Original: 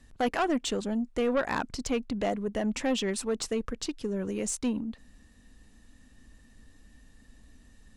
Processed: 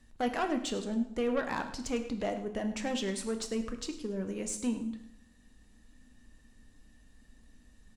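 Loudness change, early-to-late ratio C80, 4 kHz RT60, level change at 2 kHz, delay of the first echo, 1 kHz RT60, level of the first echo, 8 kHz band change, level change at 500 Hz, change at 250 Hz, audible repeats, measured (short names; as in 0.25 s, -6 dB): -3.5 dB, 11.5 dB, 0.70 s, -4.0 dB, 0.103 s, 0.70 s, -15.0 dB, -4.0 dB, -4.0 dB, -3.0 dB, 1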